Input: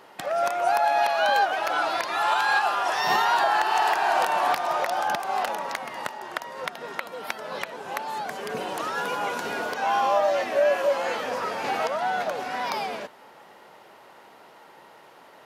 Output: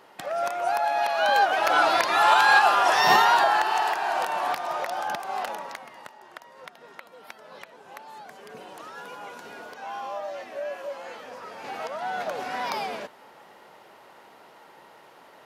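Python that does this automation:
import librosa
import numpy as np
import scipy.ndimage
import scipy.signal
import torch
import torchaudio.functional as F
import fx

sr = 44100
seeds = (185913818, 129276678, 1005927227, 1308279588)

y = fx.gain(x, sr, db=fx.line((1.0, -3.0), (1.76, 5.0), (3.1, 5.0), (3.99, -4.0), (5.55, -4.0), (6.02, -12.0), (11.42, -12.0), (12.42, -1.0)))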